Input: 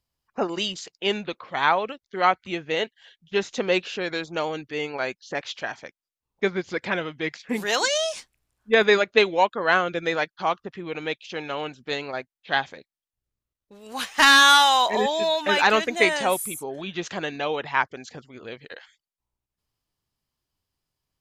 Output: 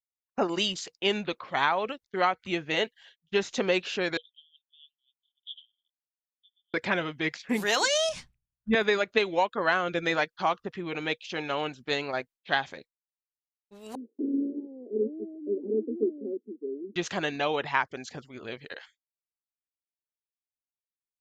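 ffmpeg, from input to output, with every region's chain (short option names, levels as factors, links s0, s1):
-filter_complex "[0:a]asettb=1/sr,asplit=3[s0][s1][s2];[s0]atrim=end=4.174[s3];[s1]atrim=start=4.17:end=6.74,asetpts=PTS-STARTPTS,afade=t=in:d=0.004:c=qsin,afade=t=out:st=2.566:d=0.004:c=qsin,acompressor=threshold=0.0251:ratio=3:attack=3.2:release=140:knee=1:detection=peak,asuperpass=centerf=3300:order=8:qfactor=5.9[s4];[s2]atrim=start=6.736[s5];[s3][s4]acrossfade=d=0.004:c1=hsin:c2=qsin[s6];[s6][s5]acrossfade=d=0.004:c1=qsin:c2=hsin,asettb=1/sr,asplit=3[s7][s8][s9];[s7]atrim=end=8.094[s10];[s8]atrim=start=8.09:end=8.75,asetpts=PTS-STARTPTS,afade=t=in:d=0.004:c=qsin,afade=t=out:st=0.656:d=0.004:c=qsin,lowpass=f=3400:p=1,lowshelf=f=240:t=q:w=1.5:g=13.5[s11];[s9]atrim=start=8.746[s12];[s10][s11]acrossfade=d=0.004:c1=hsin:c2=qsin[s13];[s13][s12]acrossfade=d=0.004:c1=qsin:c2=hsin,asettb=1/sr,asplit=3[s14][s15][s16];[s14]atrim=end=13.954[s17];[s15]atrim=start=13.95:end=16.96,asetpts=PTS-STARTPTS,afade=t=in:d=0.004:c=qsin,afade=t=out:st=3.006:d=0.004:c=qsin,aeval=exprs='(mod(2.51*val(0)+1,2)-1)/2.51':c=same,asuperpass=centerf=320:order=12:qfactor=1.3[s18];[s16]atrim=start=16.956[s19];[s17][s18]acrossfade=d=0.004:c1=hsin:c2=qsin[s20];[s20][s19]acrossfade=d=0.004:c1=qsin:c2=hsin,agate=range=0.0224:threshold=0.00562:ratio=3:detection=peak,bandreject=f=480:w=15,acompressor=threshold=0.1:ratio=10"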